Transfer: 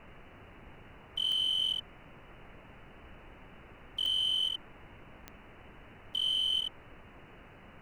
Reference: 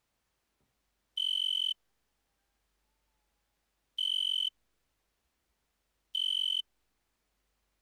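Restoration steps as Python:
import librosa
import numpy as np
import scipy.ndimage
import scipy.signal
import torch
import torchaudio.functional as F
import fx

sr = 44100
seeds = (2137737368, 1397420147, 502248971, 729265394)

y = fx.fix_declick_ar(x, sr, threshold=10.0)
y = fx.noise_reduce(y, sr, print_start_s=7.26, print_end_s=7.76, reduce_db=26.0)
y = fx.fix_echo_inverse(y, sr, delay_ms=75, level_db=-3.5)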